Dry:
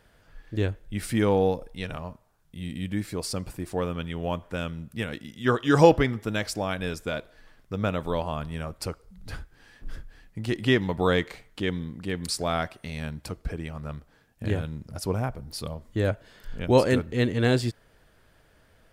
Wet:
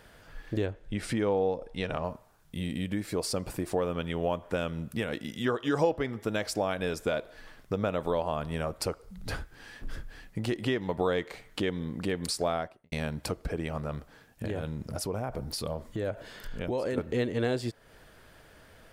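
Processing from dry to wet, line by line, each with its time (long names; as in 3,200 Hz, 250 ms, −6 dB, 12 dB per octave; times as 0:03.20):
0:00.66–0:02.04: high-frequency loss of the air 51 metres
0:12.42–0:12.92: fade out and dull
0:13.81–0:16.98: downward compressor, threshold −35 dBFS
whole clip: low-shelf EQ 150 Hz −4.5 dB; downward compressor 4 to 1, threshold −38 dBFS; dynamic equaliser 560 Hz, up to +6 dB, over −52 dBFS, Q 0.81; level +6.5 dB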